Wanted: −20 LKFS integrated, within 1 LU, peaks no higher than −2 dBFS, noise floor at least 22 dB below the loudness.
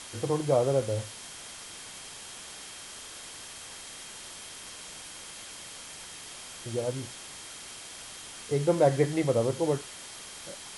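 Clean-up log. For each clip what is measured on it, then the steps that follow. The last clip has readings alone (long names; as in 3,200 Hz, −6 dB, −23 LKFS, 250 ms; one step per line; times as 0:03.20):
interfering tone 3,200 Hz; level of the tone −53 dBFS; background noise floor −45 dBFS; target noise floor −55 dBFS; integrated loudness −32.5 LKFS; sample peak −10.5 dBFS; target loudness −20.0 LKFS
→ notch filter 3,200 Hz, Q 30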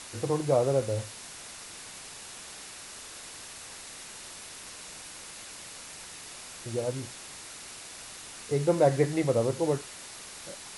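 interfering tone none found; background noise floor −45 dBFS; target noise floor −55 dBFS
→ broadband denoise 10 dB, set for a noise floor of −45 dBFS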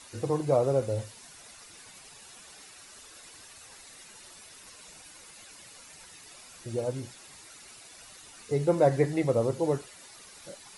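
background noise floor −51 dBFS; integrated loudness −28.0 LKFS; sample peak −11.0 dBFS; target loudness −20.0 LKFS
→ level +8 dB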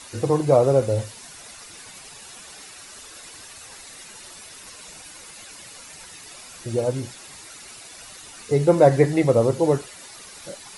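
integrated loudness −20.0 LKFS; sample peak −3.0 dBFS; background noise floor −43 dBFS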